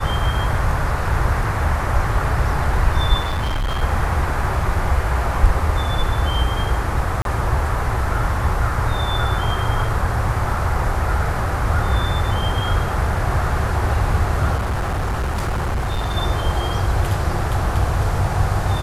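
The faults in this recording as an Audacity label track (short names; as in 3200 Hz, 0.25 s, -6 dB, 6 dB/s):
3.200000	3.830000	clipped -18 dBFS
7.220000	7.250000	gap 32 ms
14.560000	16.170000	clipped -18 dBFS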